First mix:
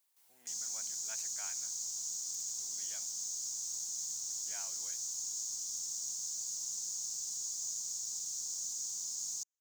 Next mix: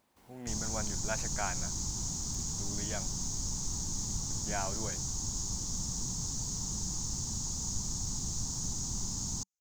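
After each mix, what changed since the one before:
master: remove differentiator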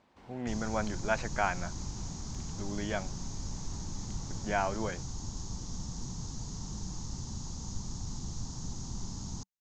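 speech +7.5 dB; master: add distance through air 150 m

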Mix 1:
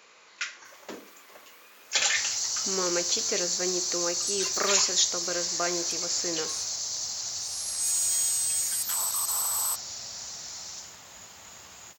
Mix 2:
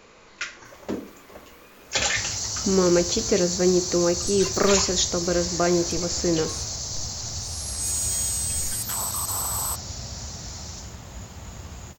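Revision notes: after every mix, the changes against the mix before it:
master: remove high-pass 1.4 kHz 6 dB/octave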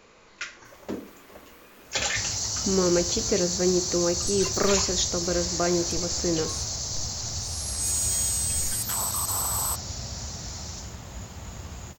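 speech -3.5 dB

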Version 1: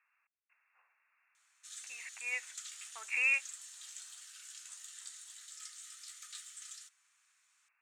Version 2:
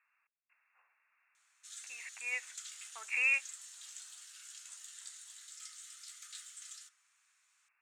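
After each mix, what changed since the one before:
reverb: on, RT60 0.50 s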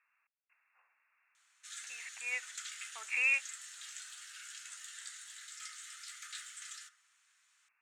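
background: add peaking EQ 1.7 kHz +11 dB 1.7 oct

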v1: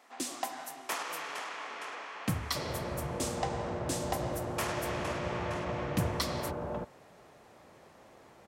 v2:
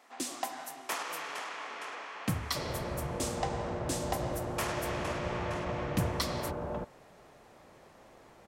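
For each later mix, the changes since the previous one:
second sound: remove high-pass 57 Hz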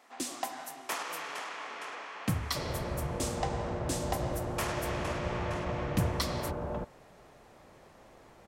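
master: add bass shelf 91 Hz +5.5 dB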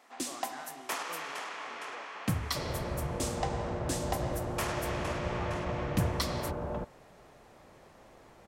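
speech +4.0 dB

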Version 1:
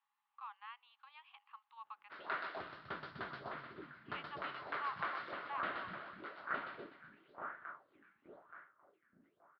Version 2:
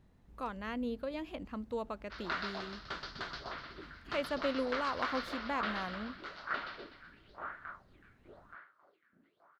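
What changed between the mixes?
speech: remove rippled Chebyshev high-pass 800 Hz, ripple 9 dB; master: remove distance through air 430 m

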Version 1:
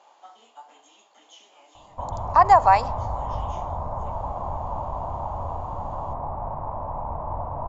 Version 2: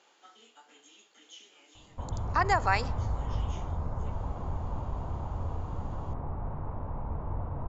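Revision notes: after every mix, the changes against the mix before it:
master: add high-order bell 800 Hz -13.5 dB 1.2 oct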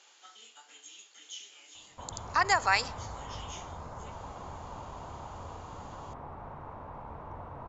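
master: add tilt EQ +3.5 dB/octave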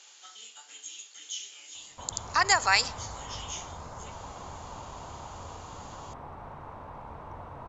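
master: add treble shelf 3.1 kHz +10.5 dB

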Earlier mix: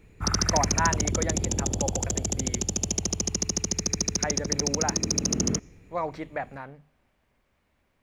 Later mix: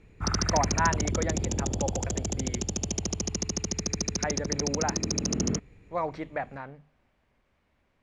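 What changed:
background: send off; master: add distance through air 59 m

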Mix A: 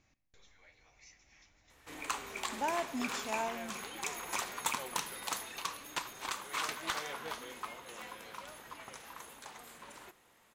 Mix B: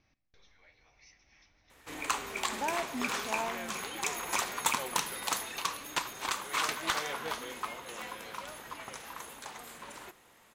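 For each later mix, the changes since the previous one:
speech: add steep low-pass 6.1 kHz 96 dB/octave; background +5.0 dB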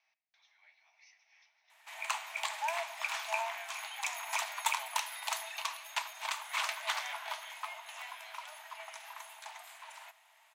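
background: add peaking EQ 610 Hz +3.5 dB 0.3 oct; master: add rippled Chebyshev high-pass 630 Hz, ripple 6 dB

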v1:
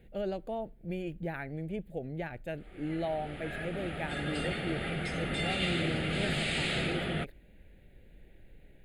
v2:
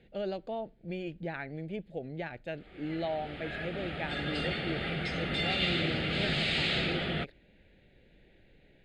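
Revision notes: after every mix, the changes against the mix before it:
speech: add bass shelf 81 Hz -11.5 dB; master: add resonant low-pass 4.6 kHz, resonance Q 1.8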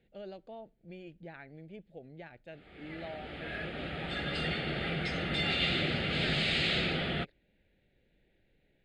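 speech -10.0 dB

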